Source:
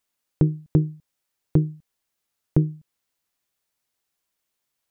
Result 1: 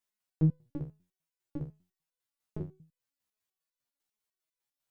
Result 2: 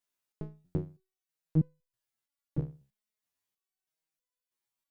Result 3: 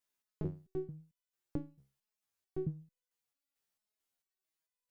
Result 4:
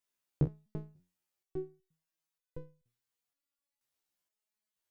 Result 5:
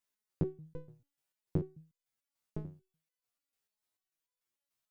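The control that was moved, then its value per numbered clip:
resonator arpeggio, rate: 10 Hz, 3.1 Hz, 4.5 Hz, 2.1 Hz, 6.8 Hz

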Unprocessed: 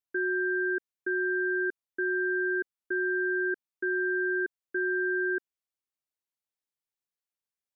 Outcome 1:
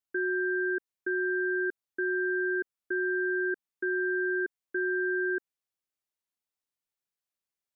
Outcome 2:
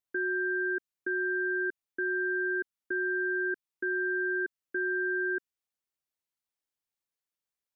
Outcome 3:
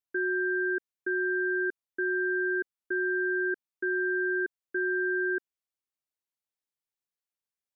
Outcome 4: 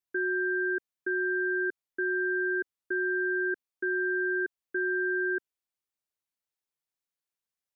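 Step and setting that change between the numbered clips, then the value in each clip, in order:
dynamic bell, frequency: 3.7 kHz, 590 Hz, 9.6 kHz, 120 Hz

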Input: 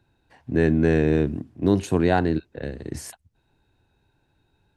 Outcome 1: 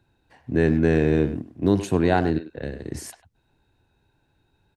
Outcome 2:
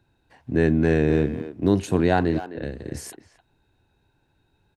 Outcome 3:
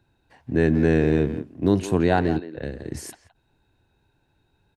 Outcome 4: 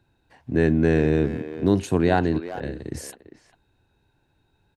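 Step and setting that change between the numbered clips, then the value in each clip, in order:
speakerphone echo, time: 100 ms, 260 ms, 170 ms, 400 ms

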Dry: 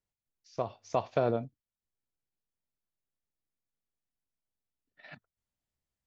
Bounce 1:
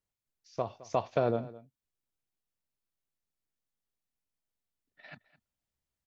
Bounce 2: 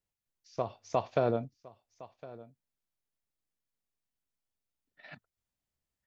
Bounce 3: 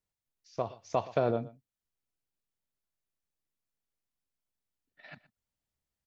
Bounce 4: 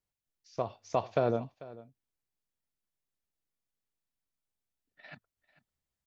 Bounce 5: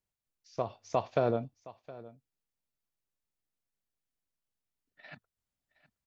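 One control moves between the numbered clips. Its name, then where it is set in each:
delay, time: 214 ms, 1061 ms, 121 ms, 444 ms, 717 ms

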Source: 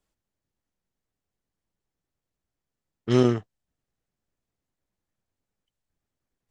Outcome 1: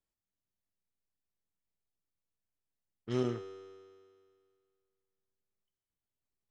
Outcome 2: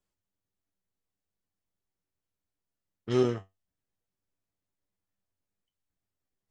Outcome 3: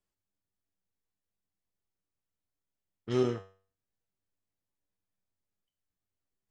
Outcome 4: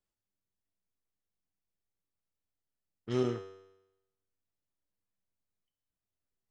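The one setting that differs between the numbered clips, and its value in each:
feedback comb, decay: 2.1 s, 0.19 s, 0.42 s, 0.92 s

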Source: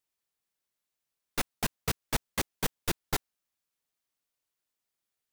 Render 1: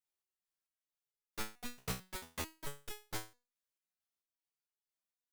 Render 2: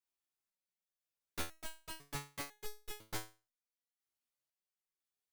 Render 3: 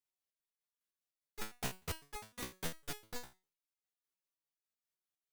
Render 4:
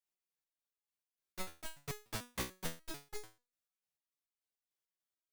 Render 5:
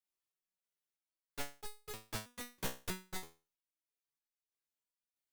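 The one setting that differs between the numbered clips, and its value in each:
resonator arpeggio, rate: 4.5 Hz, 2 Hz, 9.9 Hz, 6.8 Hz, 3.1 Hz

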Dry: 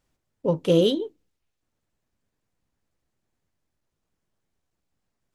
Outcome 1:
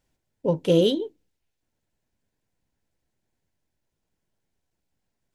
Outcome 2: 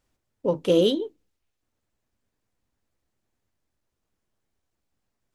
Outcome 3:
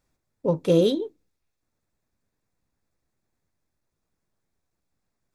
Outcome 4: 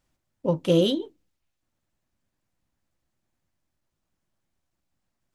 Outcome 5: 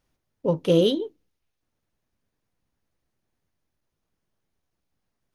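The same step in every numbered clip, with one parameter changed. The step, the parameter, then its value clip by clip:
band-stop, frequency: 1.2 kHz, 160 Hz, 3 kHz, 440 Hz, 7.6 kHz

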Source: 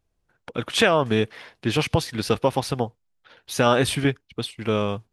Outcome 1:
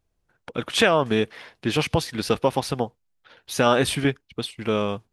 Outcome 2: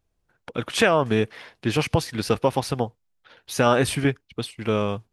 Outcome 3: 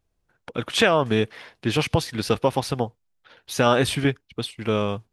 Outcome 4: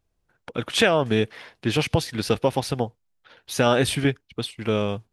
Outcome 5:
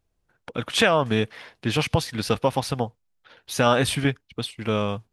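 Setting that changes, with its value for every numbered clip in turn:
dynamic bell, frequency: 110 Hz, 3.5 kHz, 9.9 kHz, 1.1 kHz, 370 Hz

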